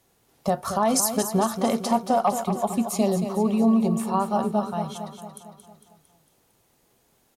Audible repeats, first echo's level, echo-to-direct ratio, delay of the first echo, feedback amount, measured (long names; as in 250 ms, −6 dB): 6, −9.0 dB, −7.5 dB, 227 ms, 55%